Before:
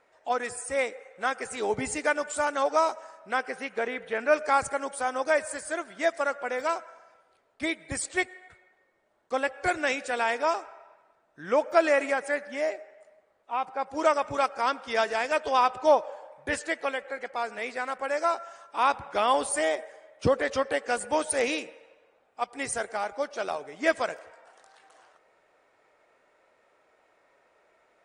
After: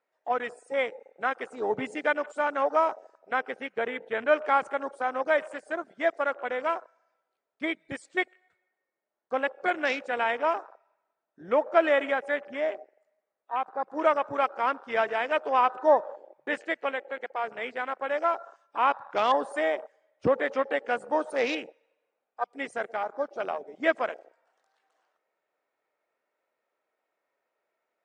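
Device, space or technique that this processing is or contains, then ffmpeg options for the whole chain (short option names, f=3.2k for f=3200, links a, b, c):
over-cleaned archive recording: -af "highpass=170,lowpass=7.1k,afwtdn=0.0158"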